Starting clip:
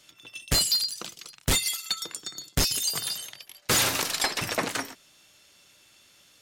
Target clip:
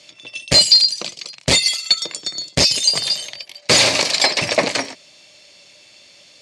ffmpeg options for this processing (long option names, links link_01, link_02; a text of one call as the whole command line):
ffmpeg -i in.wav -af "highpass=100,equalizer=frequency=590:width_type=q:width=4:gain=9,equalizer=frequency=1400:width_type=q:width=4:gain=-8,equalizer=frequency=2300:width_type=q:width=4:gain=6,equalizer=frequency=4500:width_type=q:width=4:gain=8,lowpass=frequency=8300:width=0.5412,lowpass=frequency=8300:width=1.3066,volume=8dB" out.wav